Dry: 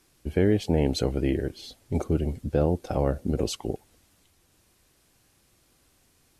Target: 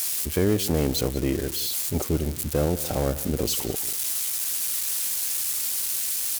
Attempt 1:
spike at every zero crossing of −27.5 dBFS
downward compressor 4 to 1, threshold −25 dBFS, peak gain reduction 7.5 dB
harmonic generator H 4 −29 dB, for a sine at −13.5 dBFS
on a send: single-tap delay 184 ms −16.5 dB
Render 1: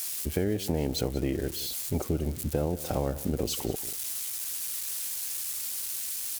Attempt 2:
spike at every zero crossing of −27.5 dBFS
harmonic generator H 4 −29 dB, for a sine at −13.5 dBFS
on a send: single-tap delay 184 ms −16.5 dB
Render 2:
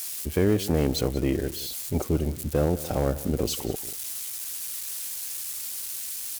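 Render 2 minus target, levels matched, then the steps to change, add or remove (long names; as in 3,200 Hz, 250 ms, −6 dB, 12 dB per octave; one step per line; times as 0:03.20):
spike at every zero crossing: distortion −7 dB
change: spike at every zero crossing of −20.5 dBFS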